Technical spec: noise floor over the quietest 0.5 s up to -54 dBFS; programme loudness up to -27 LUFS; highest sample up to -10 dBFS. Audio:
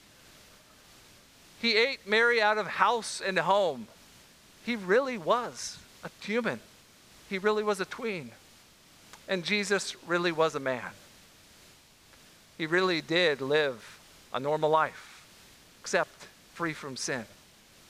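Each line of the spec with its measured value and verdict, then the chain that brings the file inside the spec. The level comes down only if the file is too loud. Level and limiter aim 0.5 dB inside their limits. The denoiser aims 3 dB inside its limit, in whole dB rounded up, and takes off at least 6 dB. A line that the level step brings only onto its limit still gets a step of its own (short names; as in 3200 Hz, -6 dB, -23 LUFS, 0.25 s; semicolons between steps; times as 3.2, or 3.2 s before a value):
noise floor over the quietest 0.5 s -57 dBFS: OK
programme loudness -28.5 LUFS: OK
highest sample -8.0 dBFS: fail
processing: limiter -10.5 dBFS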